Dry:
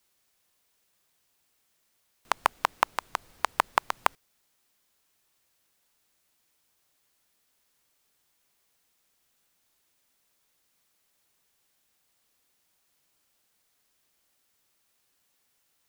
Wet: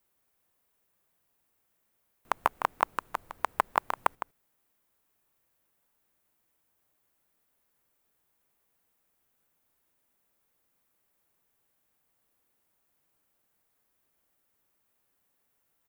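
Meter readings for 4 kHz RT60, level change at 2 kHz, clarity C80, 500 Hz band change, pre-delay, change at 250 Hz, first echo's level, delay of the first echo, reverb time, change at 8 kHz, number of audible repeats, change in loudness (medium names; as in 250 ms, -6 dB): no reverb, -4.0 dB, no reverb, -0.5 dB, no reverb, 0.0 dB, -10.5 dB, 158 ms, no reverb, -8.0 dB, 1, -2.0 dB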